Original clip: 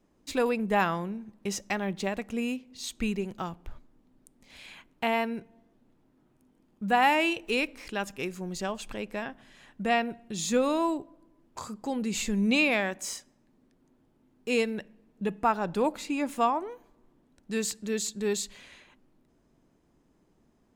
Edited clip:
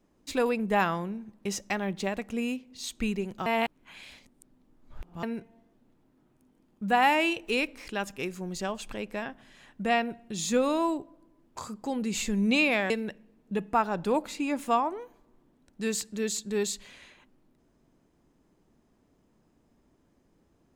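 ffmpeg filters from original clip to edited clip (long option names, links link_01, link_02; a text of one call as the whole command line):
ffmpeg -i in.wav -filter_complex "[0:a]asplit=4[link_01][link_02][link_03][link_04];[link_01]atrim=end=3.462[link_05];[link_02]atrim=start=3.458:end=5.232,asetpts=PTS-STARTPTS,areverse[link_06];[link_03]atrim=start=5.228:end=12.902[link_07];[link_04]atrim=start=14.598[link_08];[link_05][link_06]acrossfade=duration=0.004:curve1=hsin:curve2=hsin[link_09];[link_09][link_07]acrossfade=duration=0.004:curve1=hsin:curve2=hsin[link_10];[link_10][link_08]acrossfade=duration=0.004:curve1=hsin:curve2=hsin" out.wav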